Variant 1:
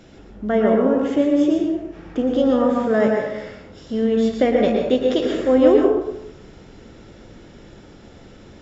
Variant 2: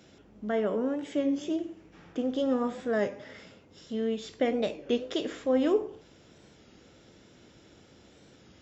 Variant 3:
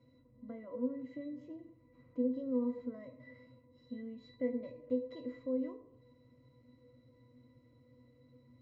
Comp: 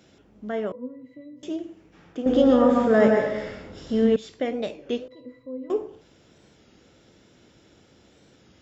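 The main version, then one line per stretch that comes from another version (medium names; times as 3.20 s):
2
0.72–1.43 s: from 3
2.26–4.16 s: from 1
5.08–5.70 s: from 3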